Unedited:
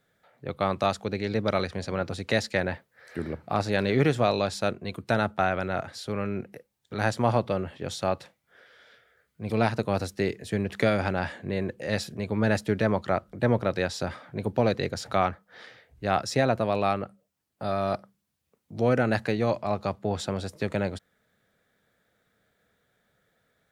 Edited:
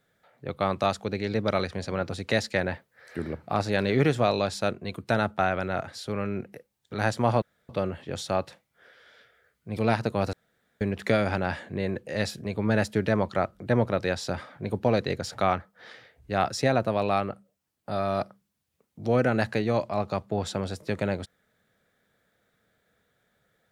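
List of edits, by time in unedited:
7.42 s: insert room tone 0.27 s
10.06–10.54 s: room tone

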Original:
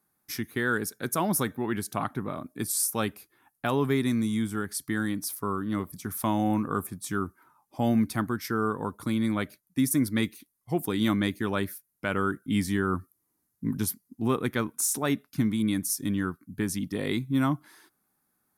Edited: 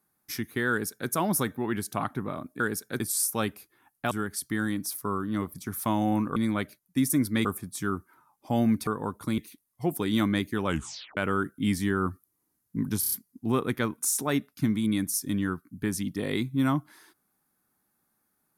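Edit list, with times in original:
0.70–1.10 s: copy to 2.60 s
3.71–4.49 s: delete
8.16–8.66 s: delete
9.17–10.26 s: move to 6.74 s
11.54 s: tape stop 0.51 s
13.88 s: stutter 0.03 s, 5 plays

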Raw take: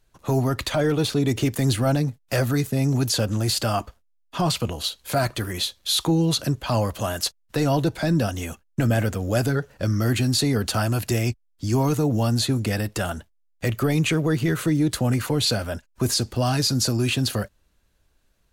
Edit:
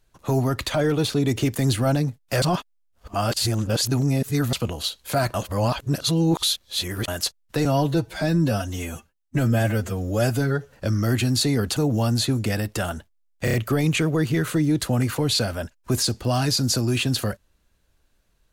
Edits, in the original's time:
2.42–4.53 s: reverse
5.34–7.08 s: reverse
7.65–9.70 s: stretch 1.5×
10.74–11.97 s: delete
13.65 s: stutter 0.03 s, 4 plays

